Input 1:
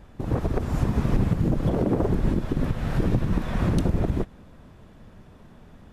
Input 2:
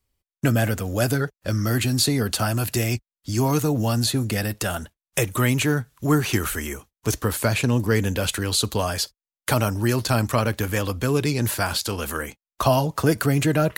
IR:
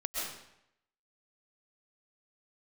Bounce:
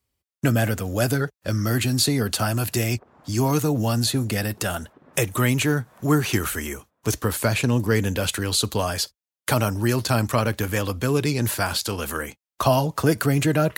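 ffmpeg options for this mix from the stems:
-filter_complex "[0:a]bandpass=f=1000:t=q:w=0.89:csg=0,adelay=2450,volume=0.158[s0];[1:a]volume=1,asplit=2[s1][s2];[s2]apad=whole_len=369169[s3];[s0][s3]sidechaincompress=threshold=0.0251:ratio=8:attack=16:release=120[s4];[s4][s1]amix=inputs=2:normalize=0,highpass=61"

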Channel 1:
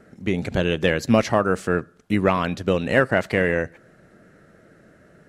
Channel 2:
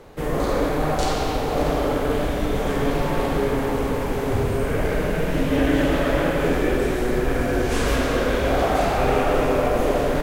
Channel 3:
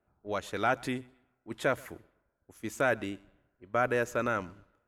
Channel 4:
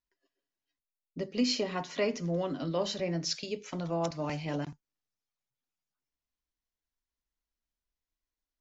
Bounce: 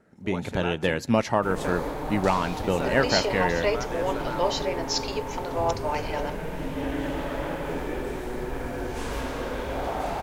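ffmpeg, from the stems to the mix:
-filter_complex "[0:a]volume=0.282[s0];[1:a]adelay=1250,volume=0.15[s1];[2:a]acompressor=threshold=0.0126:ratio=2.5,volume=0.596[s2];[3:a]highpass=f=390:w=0.5412,highpass=f=390:w=1.3066,acompressor=mode=upward:threshold=0.00316:ratio=2.5,adelay=1650,volume=0.944[s3];[s0][s1][s2][s3]amix=inputs=4:normalize=0,dynaudnorm=f=110:g=3:m=2,equalizer=f=900:t=o:w=0.22:g=10"

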